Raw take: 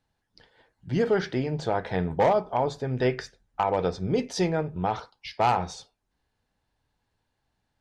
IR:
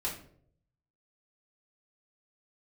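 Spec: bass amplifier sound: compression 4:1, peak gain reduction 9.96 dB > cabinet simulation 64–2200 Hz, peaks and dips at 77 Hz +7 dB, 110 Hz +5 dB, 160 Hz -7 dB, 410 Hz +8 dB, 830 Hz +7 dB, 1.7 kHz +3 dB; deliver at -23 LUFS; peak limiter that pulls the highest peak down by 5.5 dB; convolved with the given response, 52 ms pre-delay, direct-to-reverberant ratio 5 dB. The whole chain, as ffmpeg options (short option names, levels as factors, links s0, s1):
-filter_complex "[0:a]alimiter=limit=0.126:level=0:latency=1,asplit=2[s0][s1];[1:a]atrim=start_sample=2205,adelay=52[s2];[s1][s2]afir=irnorm=-1:irlink=0,volume=0.355[s3];[s0][s3]amix=inputs=2:normalize=0,acompressor=threshold=0.0282:ratio=4,highpass=f=64:w=0.5412,highpass=f=64:w=1.3066,equalizer=f=77:t=q:w=4:g=7,equalizer=f=110:t=q:w=4:g=5,equalizer=f=160:t=q:w=4:g=-7,equalizer=f=410:t=q:w=4:g=8,equalizer=f=830:t=q:w=4:g=7,equalizer=f=1700:t=q:w=4:g=3,lowpass=f=2200:w=0.5412,lowpass=f=2200:w=1.3066,volume=2.66"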